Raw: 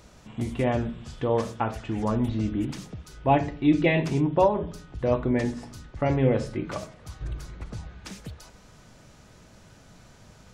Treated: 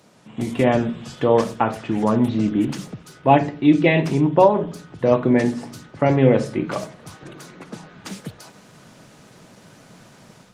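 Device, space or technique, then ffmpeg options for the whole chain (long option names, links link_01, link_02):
video call: -filter_complex "[0:a]asettb=1/sr,asplit=3[link_01][link_02][link_03];[link_01]atrim=end=7.144[link_04];[link_02]atrim=start=7.14:end=7.95,asetpts=PTS-STARTPTS,afade=type=in:duration=0.004:curve=qsin,afade=type=out:start_time=0.806:duration=0.004:curve=qsin,highpass=frequency=170:width=0.5412,highpass=frequency=170:width=1.3066[link_05];[link_03]atrim=start=7.946[link_06];[link_04][link_05]acrossfade=duration=0.004:curve1=hsin:curve2=qsin[link_07];[link_07][link_06]acrossfade=duration=0.004:curve1=qsin:curve2=hsin,highpass=frequency=130:width=0.5412,highpass=frequency=130:width=1.3066,dynaudnorm=framelen=260:gausssize=3:maxgain=7dB,volume=1.5dB" -ar 48000 -c:a libopus -b:a 24k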